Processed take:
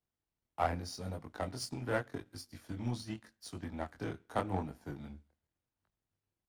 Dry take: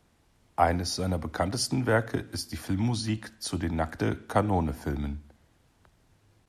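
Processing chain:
chorus effect 0.84 Hz, delay 19.5 ms, depth 5.5 ms
power curve on the samples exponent 1.4
level −3.5 dB

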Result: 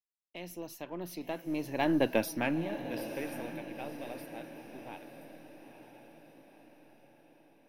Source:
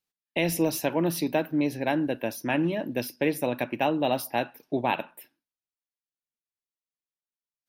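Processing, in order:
gain on one half-wave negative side −3 dB
source passing by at 0:02.10, 14 m/s, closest 2.1 metres
feedback delay with all-pass diffusion 950 ms, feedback 52%, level −10.5 dB
level +4 dB

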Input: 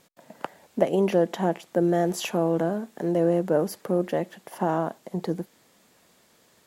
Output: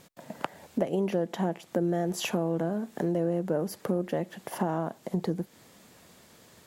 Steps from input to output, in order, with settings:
parametric band 83 Hz +7 dB 2.5 octaves
downward compressor 3 to 1, threshold −32 dBFS, peak gain reduction 13.5 dB
level +4 dB

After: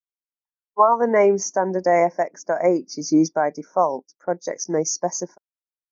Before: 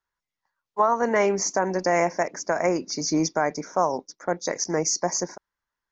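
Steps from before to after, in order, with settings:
every bin expanded away from the loudest bin 1.5 to 1
level +5 dB

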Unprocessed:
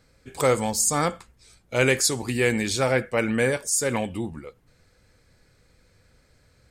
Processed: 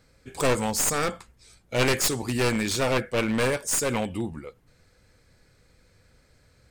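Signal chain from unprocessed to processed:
wavefolder on the positive side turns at −21.5 dBFS

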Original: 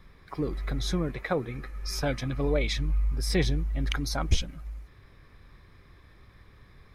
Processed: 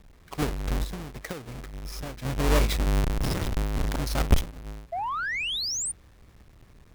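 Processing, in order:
each half-wave held at its own peak
0:00.84–0:02.25: downward compressor 12 to 1, threshold −30 dBFS, peak gain reduction 12 dB
0:03.04–0:04.02: wrap-around overflow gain 21 dB
0:04.92–0:05.92: sound drawn into the spectrogram rise 650–9,500 Hz −27 dBFS
harmonic generator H 7 −25 dB, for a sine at −11.5 dBFS

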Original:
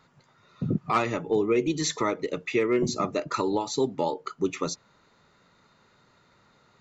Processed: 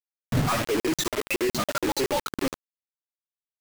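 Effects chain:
spectral dynamics exaggerated over time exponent 2
time stretch by overlap-add 0.53×, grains 63 ms
parametric band 200 Hz −4.5 dB 0.35 octaves
on a send: ambience of single reflections 19 ms −6.5 dB, 74 ms −13 dB
on the sum: leveller curve on the samples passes 5
low-shelf EQ 290 Hz +10 dB
tuned comb filter 180 Hz, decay 1.5 s, mix 50%
in parallel at −2.5 dB: downward compressor 16 to 1, threshold −32 dBFS, peak gain reduction 16.5 dB
on the sum: bit reduction 4 bits
regular buffer underruns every 0.14 s, samples 2,048, zero, from 0:00.80
level −4.5 dB

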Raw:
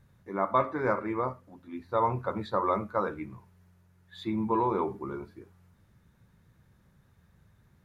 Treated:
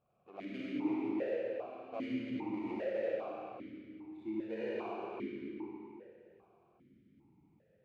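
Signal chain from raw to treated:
running median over 41 samples
downward compressor 1.5 to 1, threshold −51 dBFS, peak gain reduction 9.5 dB
comb and all-pass reverb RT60 3.2 s, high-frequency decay 0.8×, pre-delay 20 ms, DRR −7 dB
formant filter that steps through the vowels 2.5 Hz
level +7 dB

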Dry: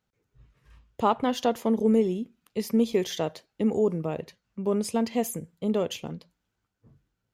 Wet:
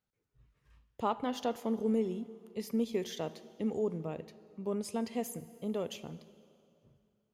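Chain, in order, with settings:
dense smooth reverb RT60 2.6 s, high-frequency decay 0.85×, DRR 15 dB
level −9 dB

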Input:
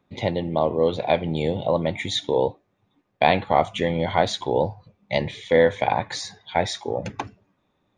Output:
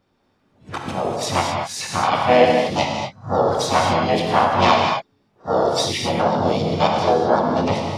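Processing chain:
played backwards from end to start
pitch-shifted copies added +4 semitones −2 dB, +7 semitones −2 dB, +12 semitones −16 dB
reverb whose tail is shaped and stops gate 270 ms flat, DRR 0 dB
level −2 dB

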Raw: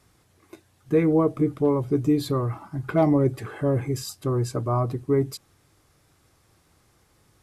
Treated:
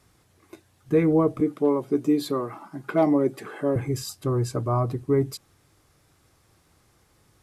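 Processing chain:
0:01.40–0:03.76: high-pass filter 190 Hz 24 dB per octave

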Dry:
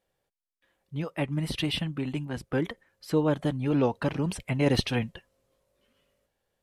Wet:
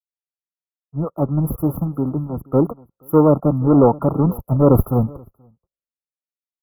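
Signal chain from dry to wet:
leveller curve on the samples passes 3
linear-phase brick-wall band-stop 1,400–11,000 Hz
single-tap delay 480 ms −17.5 dB
multiband upward and downward expander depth 100%
level +2 dB

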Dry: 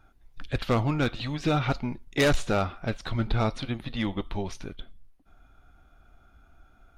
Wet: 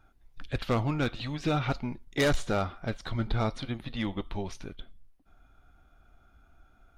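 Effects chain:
0:02.05–0:03.77: notch filter 2,600 Hz, Q 11
level −3 dB

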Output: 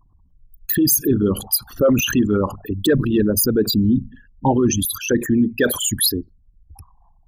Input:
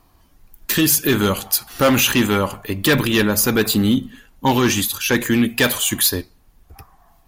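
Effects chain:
spectral envelope exaggerated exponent 3
parametric band 2,400 Hz −8 dB 0.81 octaves

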